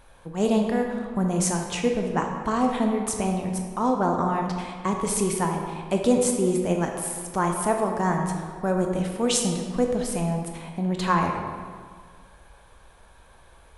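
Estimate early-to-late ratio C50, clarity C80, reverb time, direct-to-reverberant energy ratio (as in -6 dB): 3.5 dB, 5.5 dB, 1.8 s, 2.0 dB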